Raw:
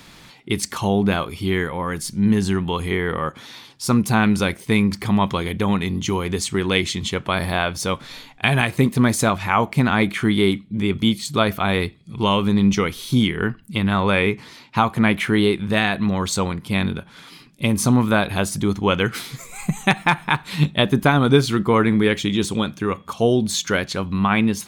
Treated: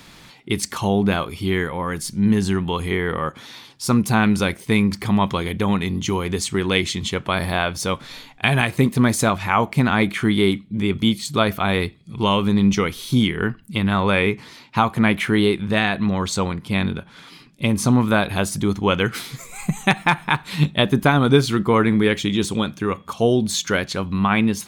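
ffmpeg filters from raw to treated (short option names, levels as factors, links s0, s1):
-filter_complex "[0:a]asettb=1/sr,asplit=3[s0][s1][s2];[s0]atrim=end=15.614[s3];[s1]atrim=start=15.61:end=18.08,asetpts=PTS-STARTPTS,afade=t=in:d=0.004:c=qsin,afade=t=out:st=2.466:d=0.004:c=qsin,highshelf=f=9900:g=-7.5[s4];[s2]atrim=start=18.076[s5];[s3][s4]acrossfade=d=0.004:c1=hsin:c2=qsin[s6];[s6][s5]acrossfade=d=0.004:c1=qsin:c2=hsin"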